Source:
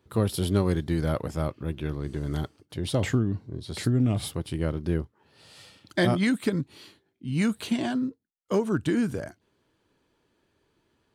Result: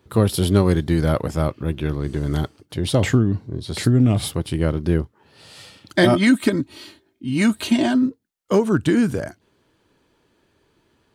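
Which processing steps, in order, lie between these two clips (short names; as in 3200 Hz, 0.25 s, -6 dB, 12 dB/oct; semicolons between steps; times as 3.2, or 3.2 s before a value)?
6.03–8.06 comb 3.2 ms, depth 56%; gain +7.5 dB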